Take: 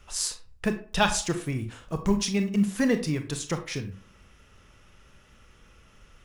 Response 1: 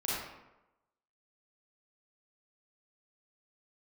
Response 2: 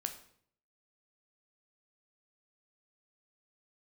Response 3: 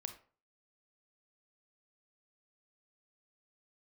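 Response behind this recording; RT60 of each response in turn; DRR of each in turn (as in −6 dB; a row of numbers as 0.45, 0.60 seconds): 3; 0.95, 0.60, 0.40 seconds; −8.0, 6.0, 7.0 decibels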